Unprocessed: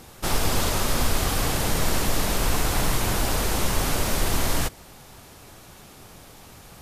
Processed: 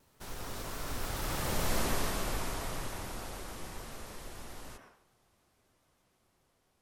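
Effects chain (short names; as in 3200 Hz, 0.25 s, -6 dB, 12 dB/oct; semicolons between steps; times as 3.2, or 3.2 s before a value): Doppler pass-by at 1.75, 37 m/s, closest 16 m; on a send at -2 dB: reverb RT60 0.55 s, pre-delay 93 ms; on the sum: shaped vibrato saw down 6.9 Hz, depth 100 cents; gain -8.5 dB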